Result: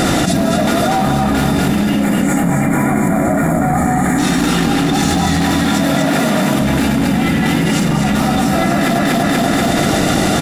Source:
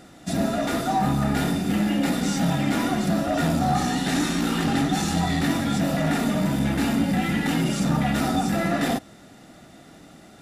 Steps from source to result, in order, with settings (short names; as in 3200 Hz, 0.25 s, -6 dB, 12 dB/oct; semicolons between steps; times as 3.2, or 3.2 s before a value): one-sided fold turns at -17 dBFS; 2.03–4.18 spectral gain 2400–6600 Hz -19 dB; 5.39–6.61 HPF 210 Hz 6 dB/oct; feedback echo 0.241 s, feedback 38%, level -3.5 dB; fast leveller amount 100%; gain +4 dB